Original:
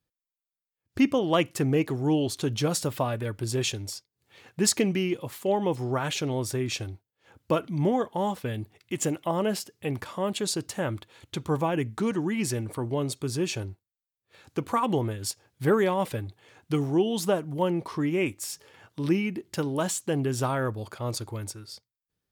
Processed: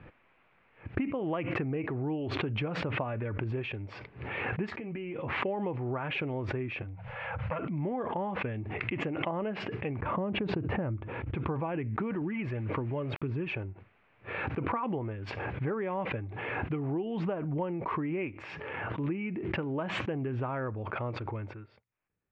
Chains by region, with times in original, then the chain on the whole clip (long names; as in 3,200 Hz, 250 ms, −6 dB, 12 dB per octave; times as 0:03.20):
0:04.70–0:05.39: downward compressor 16 to 1, threshold −31 dBFS + double-tracking delay 13 ms −9 dB
0:06.82–0:07.59: Chebyshev band-stop filter 180–500 Hz, order 4 + upward compression, threshold −34 dBFS + saturating transformer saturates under 880 Hz
0:10.02–0:11.35: low-pass filter 7,700 Hz + spectral tilt −3.5 dB per octave
0:12.21–0:13.54: notch filter 730 Hz, Q 9.8 + phase shifter 1.8 Hz, delay 1.9 ms, feedback 40% + bit-depth reduction 8 bits, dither none
whole clip: downward compressor, threshold −28 dBFS; Chebyshev low-pass filter 2,500 Hz, order 4; background raised ahead of every attack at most 24 dB per second; level −1.5 dB